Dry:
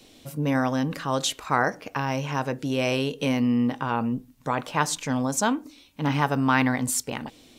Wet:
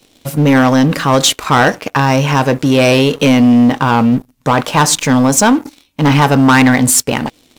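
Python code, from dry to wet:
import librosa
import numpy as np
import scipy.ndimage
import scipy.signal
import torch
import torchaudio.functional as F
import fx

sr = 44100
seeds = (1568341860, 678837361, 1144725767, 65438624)

y = fx.leveller(x, sr, passes=3)
y = y * librosa.db_to_amplitude(5.5)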